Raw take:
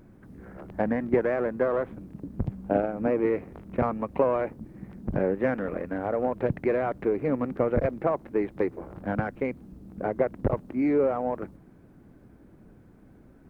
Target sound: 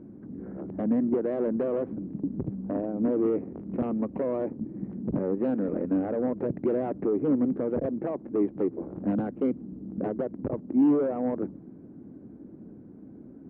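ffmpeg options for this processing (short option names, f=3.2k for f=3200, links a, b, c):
-af "alimiter=limit=-18dB:level=0:latency=1:release=460,aeval=exprs='0.126*sin(PI/2*1.78*val(0)/0.126)':c=same,bandpass=f=270:t=q:w=1.5:csg=0,volume=1.5dB"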